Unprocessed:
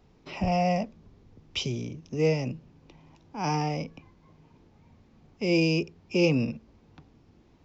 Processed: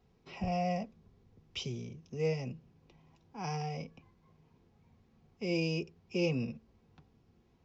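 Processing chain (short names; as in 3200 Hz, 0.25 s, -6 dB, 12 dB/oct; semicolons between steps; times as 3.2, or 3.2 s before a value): notch comb 300 Hz; gain -7.5 dB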